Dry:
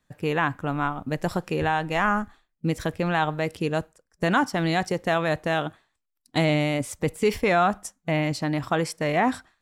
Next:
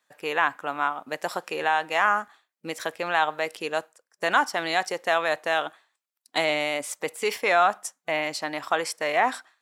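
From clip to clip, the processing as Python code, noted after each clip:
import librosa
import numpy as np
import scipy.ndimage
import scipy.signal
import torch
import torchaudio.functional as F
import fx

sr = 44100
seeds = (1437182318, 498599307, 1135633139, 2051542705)

y = scipy.signal.sosfilt(scipy.signal.butter(2, 610.0, 'highpass', fs=sr, output='sos'), x)
y = y * 10.0 ** (2.5 / 20.0)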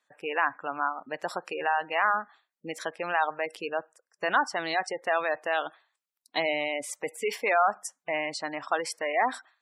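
y = fx.spec_gate(x, sr, threshold_db=-20, keep='strong')
y = y * 10.0 ** (-3.0 / 20.0)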